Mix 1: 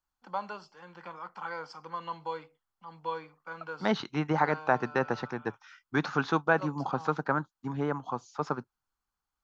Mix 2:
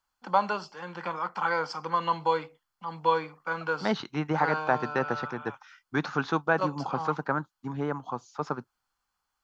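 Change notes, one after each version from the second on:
first voice +10.5 dB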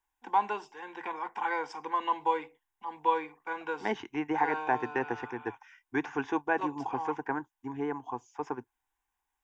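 first voice: remove Butterworth band-stop 3.8 kHz, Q 6.3; master: add static phaser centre 860 Hz, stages 8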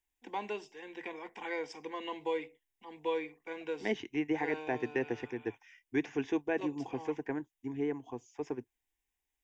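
master: add high-order bell 1.1 kHz -14 dB 1.2 oct

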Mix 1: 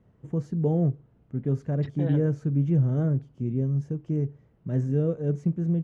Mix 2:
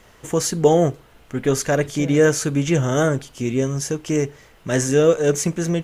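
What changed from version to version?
first voice: remove band-pass filter 140 Hz, Q 1.6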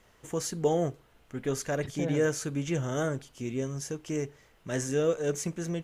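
first voice -11.5 dB

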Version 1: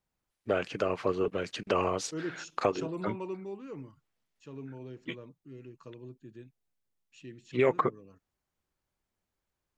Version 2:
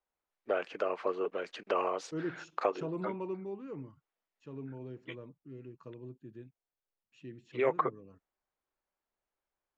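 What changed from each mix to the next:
first voice: add high-pass 460 Hz 12 dB/octave; master: add low-pass 1.6 kHz 6 dB/octave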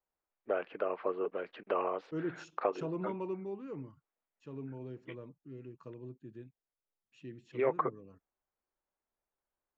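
first voice: add distance through air 420 m

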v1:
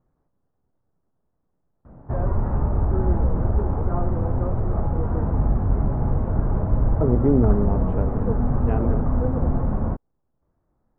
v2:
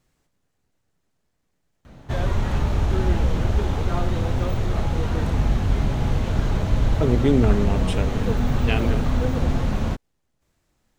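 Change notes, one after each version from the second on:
master: remove low-pass 1.2 kHz 24 dB/octave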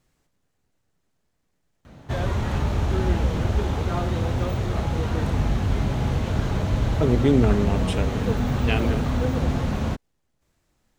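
background: add high-pass 51 Hz

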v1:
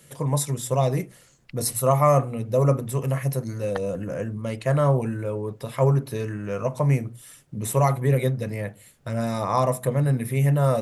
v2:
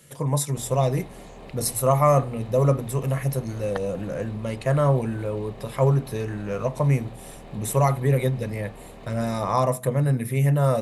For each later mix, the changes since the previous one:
background: unmuted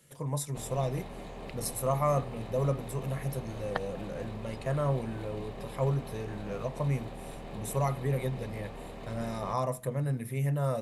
first voice -9.5 dB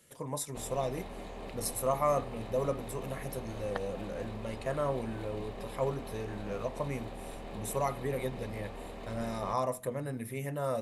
second voice -5.0 dB; master: add peaking EQ 140 Hz -11 dB 0.36 oct

